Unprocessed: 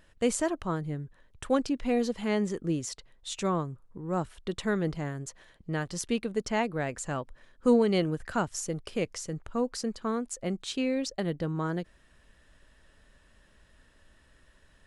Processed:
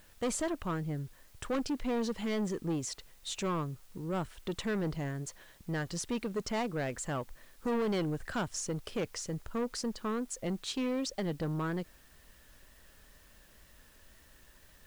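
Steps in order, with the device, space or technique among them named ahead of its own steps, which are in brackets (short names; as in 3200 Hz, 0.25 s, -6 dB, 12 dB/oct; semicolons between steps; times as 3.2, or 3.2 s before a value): compact cassette (soft clip -28 dBFS, distortion -8 dB; LPF 9900 Hz; wow and flutter; white noise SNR 28 dB)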